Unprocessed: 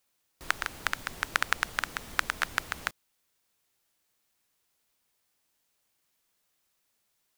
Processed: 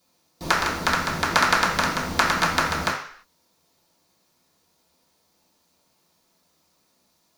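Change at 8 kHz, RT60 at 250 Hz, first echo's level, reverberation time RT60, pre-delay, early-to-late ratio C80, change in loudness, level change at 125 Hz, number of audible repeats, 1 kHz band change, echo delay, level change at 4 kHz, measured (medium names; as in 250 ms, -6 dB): +9.5 dB, 0.50 s, no echo, 0.55 s, 3 ms, 9.0 dB, +10.0 dB, +17.0 dB, no echo, +13.0 dB, no echo, +10.0 dB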